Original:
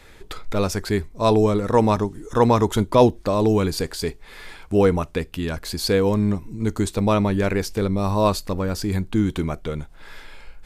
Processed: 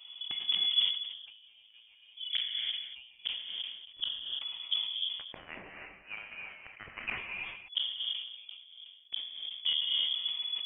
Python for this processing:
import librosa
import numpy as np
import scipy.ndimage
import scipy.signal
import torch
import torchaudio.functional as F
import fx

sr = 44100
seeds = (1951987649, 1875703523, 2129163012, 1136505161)

y = fx.wiener(x, sr, points=25)
y = fx.highpass(y, sr, hz=960.0, slope=24, at=(5.11, 7.18))
y = fx.gate_flip(y, sr, shuts_db=-17.0, range_db=-41)
y = fx.step_gate(y, sr, bpm=153, pattern='xxxx.xxxxx...xxx', floor_db=-60.0, edge_ms=4.5)
y = y + 10.0 ** (-12.5 / 20.0) * np.pad(y, (int(233 * sr / 1000.0), 0))[:len(y)]
y = fx.rev_gated(y, sr, seeds[0], gate_ms=360, shape='rising', drr_db=-1.0)
y = fx.freq_invert(y, sr, carrier_hz=3400)
y = fx.sustainer(y, sr, db_per_s=69.0)
y = F.gain(torch.from_numpy(y), -3.5).numpy()